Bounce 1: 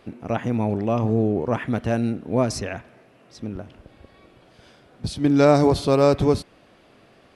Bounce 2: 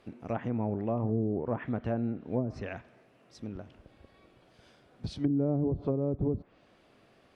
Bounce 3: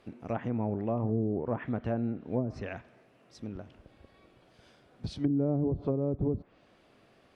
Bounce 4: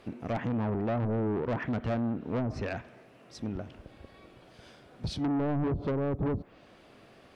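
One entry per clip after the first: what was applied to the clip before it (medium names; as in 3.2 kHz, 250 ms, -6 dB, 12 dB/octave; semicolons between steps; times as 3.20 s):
low-pass that closes with the level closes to 330 Hz, closed at -14.5 dBFS; trim -8.5 dB
no audible change
saturation -32.5 dBFS, distortion -8 dB; trim +6.5 dB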